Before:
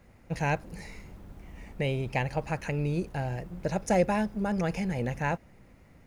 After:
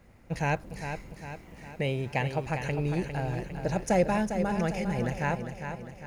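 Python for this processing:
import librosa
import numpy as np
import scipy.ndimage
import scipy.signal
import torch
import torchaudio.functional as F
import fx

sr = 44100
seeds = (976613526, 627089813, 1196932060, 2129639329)

y = fx.highpass(x, sr, hz=89.0, slope=12, at=(1.13, 2.44))
y = fx.echo_feedback(y, sr, ms=403, feedback_pct=52, wet_db=-8)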